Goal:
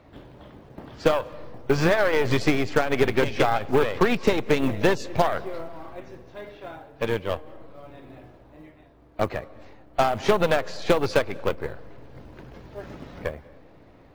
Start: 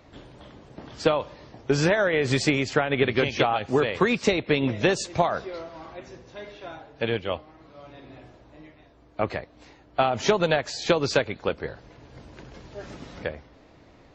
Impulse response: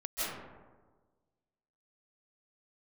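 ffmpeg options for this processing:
-filter_complex "[0:a]aemphasis=mode=reproduction:type=75fm,acrusher=bits=8:mode=log:mix=0:aa=0.000001,aeval=exprs='0.398*(cos(1*acos(clip(val(0)/0.398,-1,1)))-cos(1*PI/2))+0.0398*(cos(8*acos(clip(val(0)/0.398,-1,1)))-cos(8*PI/2))':c=same,asplit=2[s0][s1];[1:a]atrim=start_sample=2205,asetrate=37485,aresample=44100[s2];[s1][s2]afir=irnorm=-1:irlink=0,volume=0.0376[s3];[s0][s3]amix=inputs=2:normalize=0"

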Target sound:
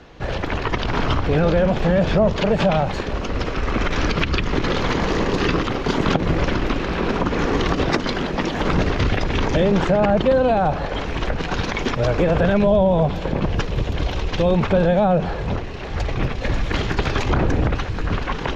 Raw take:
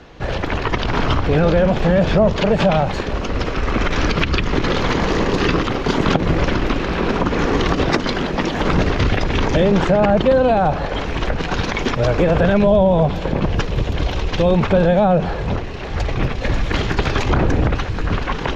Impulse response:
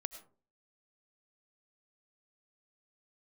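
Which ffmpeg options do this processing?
-af "volume=0.75"

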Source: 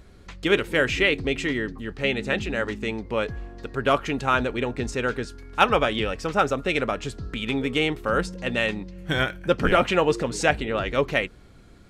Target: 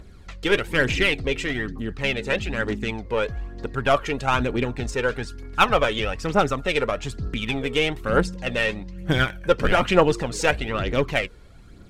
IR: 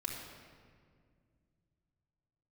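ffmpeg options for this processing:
-af "aeval=exprs='0.668*(cos(1*acos(clip(val(0)/0.668,-1,1)))-cos(1*PI/2))+0.0266*(cos(8*acos(clip(val(0)/0.668,-1,1)))-cos(8*PI/2))':c=same,aphaser=in_gain=1:out_gain=1:delay=2.3:decay=0.48:speed=1.1:type=triangular"

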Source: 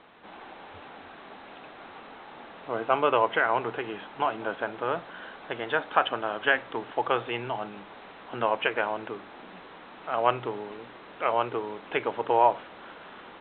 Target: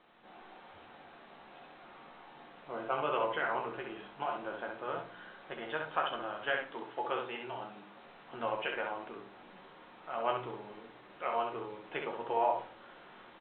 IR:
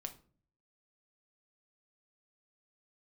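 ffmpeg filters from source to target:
-filter_complex "[0:a]asettb=1/sr,asplit=3[s0][s1][s2];[s0]atrim=end=6.624[s3];[s1]atrim=start=6.62:end=7.97,asetpts=PTS-STARTPTS,afade=t=in:d=0.004:c=qsin,afade=t=out:st=1.346:d=0.004:c=qsin,highpass=140[s4];[s2]atrim=start=7.966[s5];[s3][s4]acrossfade=d=0.004:c1=hsin:c2=qsin[s6];[s6][s5]acrossfade=d=0.004:c1=qsin:c2=hsin,aecho=1:1:13|66:0.501|0.596[s7];[1:a]atrim=start_sample=2205[s8];[s7][s8]afir=irnorm=-1:irlink=0,volume=0.422"

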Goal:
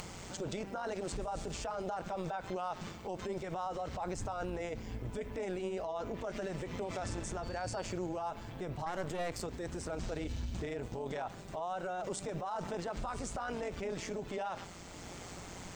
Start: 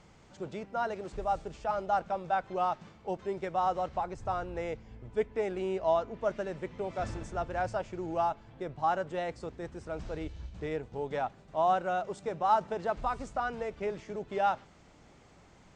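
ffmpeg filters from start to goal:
-filter_complex "[0:a]aemphasis=mode=production:type=50fm,acompressor=mode=upward:threshold=0.00355:ratio=2.5,alimiter=level_in=5.96:limit=0.0631:level=0:latency=1:release=50,volume=0.168,asettb=1/sr,asplit=3[s0][s1][s2];[s0]atrim=end=7.434[s3];[s1]atrim=start=7.43:end=7.93,asetpts=PTS-STARTPTS,afade=t=in:d=0.004:c=qsin,afade=t=out:st=0.496:d=0.004:c=qsin,aeval=exprs='val(0)+0.000708*sin(2*PI*4500*n/s)':c=same[s4];[s2]atrim=start=7.926[s5];[s3][s4]acrossfade=d=0.004:c1=hsin:c2=qsin[s6];[s6][s5]acrossfade=d=0.004:c1=qsin:c2=hsin,asettb=1/sr,asplit=3[s7][s8][s9];[s7]atrim=end=8.864[s10];[s8]atrim=start=8.86:end=9.43,asetpts=PTS-STARTPTS,afade=t=in:d=0.004:c=qsin,afade=t=out:st=0.566:d=0.004:c=qsin,aeval=exprs='0.0106*(cos(1*acos(clip(val(0)/0.0106,-1,1)))-cos(1*PI/2))+0.00237*(cos(2*acos(clip(val(0)/0.0106,-1,1)))-cos(2*PI/2))+0.000668*(cos(6*acos(clip(val(0)/0.0106,-1,1)))-cos(6*PI/2))':c=same[s11];[s9]atrim=start=9.426[s12];[s10][s11]acrossfade=d=0.004:c1=hsin:c2=qsin[s13];[s13][s12]acrossfade=d=0.004:c1=qsin:c2=hsin,tremolo=f=180:d=0.621,volume=3.55"

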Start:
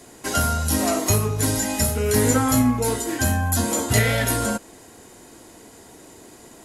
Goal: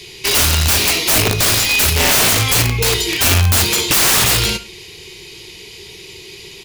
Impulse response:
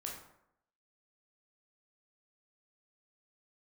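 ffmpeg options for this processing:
-filter_complex "[0:a]firequalizer=gain_entry='entry(170,0);entry(260,-23);entry(380,4);entry(600,-21);entry(910,-9);entry(1500,-13);entry(2300,13);entry(4800,10);entry(7800,-9);entry(12000,-3)':delay=0.05:min_phase=1,aeval=exprs='(mod(7.08*val(0)+1,2)-1)/7.08':c=same,asplit=2[s0][s1];[1:a]atrim=start_sample=2205,afade=t=out:st=0.16:d=0.01,atrim=end_sample=7497[s2];[s1][s2]afir=irnorm=-1:irlink=0,volume=0.631[s3];[s0][s3]amix=inputs=2:normalize=0,volume=2.11"

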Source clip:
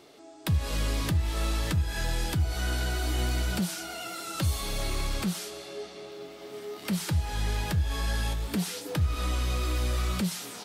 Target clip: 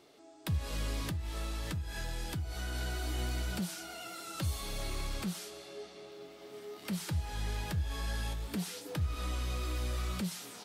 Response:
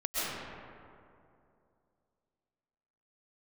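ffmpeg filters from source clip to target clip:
-filter_complex "[0:a]asettb=1/sr,asplit=3[s0][s1][s2];[s0]atrim=end=1.084[s3];[s1]atrim=start=1.08:end=2.75,asetpts=PTS-STARTPTS,afade=t=in:d=0.004:c=qsin,afade=t=out:st=1.666:d=0.004:c=qsin,acompressor=threshold=0.0501:ratio=6[s4];[s2]atrim=start=2.746[s5];[s3][s4]acrossfade=d=0.004:c1=hsin:c2=qsin[s6];[s6][s5]acrossfade=d=0.004:c1=qsin:c2=hsin,volume=0.447"

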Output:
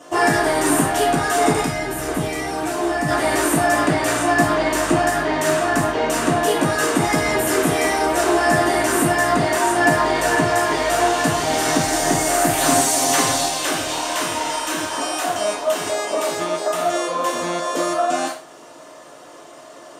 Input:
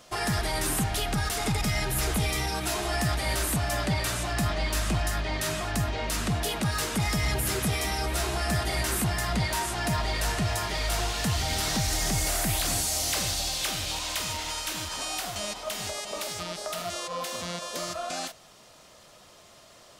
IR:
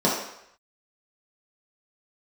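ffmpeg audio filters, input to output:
-filter_complex "[0:a]asettb=1/sr,asplit=3[s0][s1][s2];[s0]atrim=end=1.644[s3];[s1]atrim=start=1.64:end=3.08,asetpts=PTS-STARTPTS,afade=t=in:d=0.004:c=qsin,afade=t=out:st=1.436:d=0.004:c=qsin,acrossover=split=250[s4][s5];[s5]acompressor=threshold=0.02:ratio=6[s6];[s4][s6]amix=inputs=2:normalize=0[s7];[s2]atrim=start=3.076[s8];[s3][s7]acrossfade=d=0.004:c1=hsin:c2=qsin[s9];[s9][s8]acrossfade=d=0.004:c1=qsin:c2=hsin,asettb=1/sr,asplit=3[s10][s11][s12];[s10]atrim=end=12.574[s13];[s11]atrim=start=12.57:end=13.47,asetpts=PTS-STARTPTS,afade=t=in:d=0.004:c=qsin,afade=t=out:st=0.896:d=0.004:c=qsin,aecho=1:1:7.5:0.84,atrim=end_sample=39690[s14];[s12]atrim=start=13.466[s15];[s13][s14]acrossfade=d=0.004:c1=hsin:c2=qsin[s16];[s16][s15]acrossfade=d=0.004:c1=qsin:c2=hsin[s17];[1:a]atrim=start_sample=2205,afade=t=out:st=0.27:d=0.01,atrim=end_sample=12348,asetrate=70560,aresample=44100[s18];[s17][s18]afir=irnorm=-1:irlink=0,volume=0.708"

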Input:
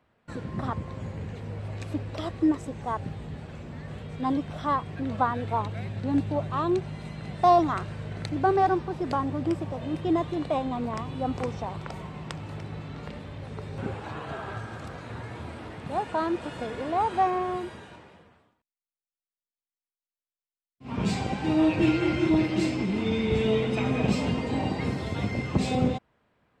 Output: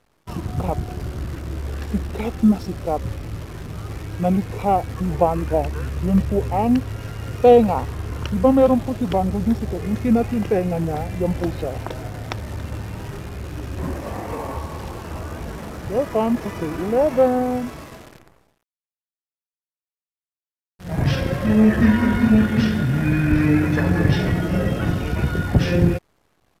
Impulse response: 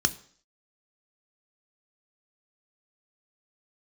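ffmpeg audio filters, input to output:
-af "acrusher=bits=9:dc=4:mix=0:aa=0.000001,asetrate=30296,aresample=44100,atempo=1.45565,volume=2.51"

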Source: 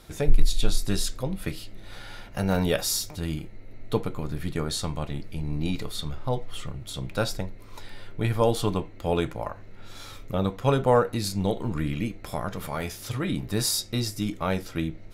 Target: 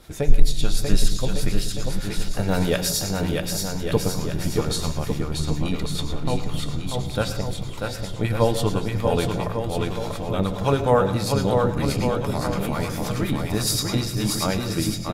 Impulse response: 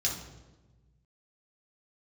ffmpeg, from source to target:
-filter_complex "[0:a]aecho=1:1:640|1152|1562|1889|2151:0.631|0.398|0.251|0.158|0.1,asplit=2[s0][s1];[1:a]atrim=start_sample=2205,adelay=105[s2];[s1][s2]afir=irnorm=-1:irlink=0,volume=0.15[s3];[s0][s3]amix=inputs=2:normalize=0,acrossover=split=810[s4][s5];[s4]aeval=exprs='val(0)*(1-0.5/2+0.5/2*cos(2*PI*9.6*n/s))':c=same[s6];[s5]aeval=exprs='val(0)*(1-0.5/2-0.5/2*cos(2*PI*9.6*n/s))':c=same[s7];[s6][s7]amix=inputs=2:normalize=0,volume=1.58"

